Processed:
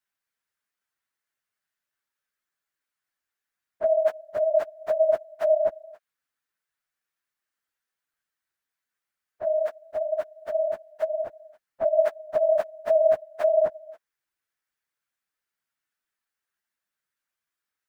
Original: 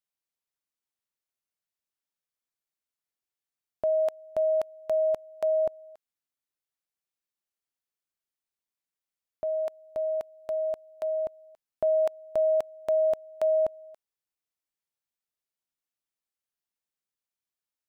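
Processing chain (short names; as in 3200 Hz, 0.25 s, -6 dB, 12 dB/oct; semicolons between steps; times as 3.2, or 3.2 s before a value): phase scrambler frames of 50 ms; bell 1600 Hz +12 dB 0.96 oct; gain +2 dB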